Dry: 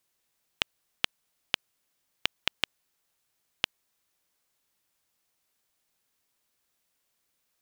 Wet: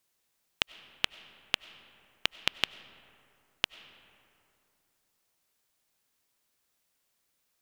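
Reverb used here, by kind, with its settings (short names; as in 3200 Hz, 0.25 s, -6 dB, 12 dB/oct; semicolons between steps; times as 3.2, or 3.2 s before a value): digital reverb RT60 2.8 s, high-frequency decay 0.45×, pre-delay 55 ms, DRR 16.5 dB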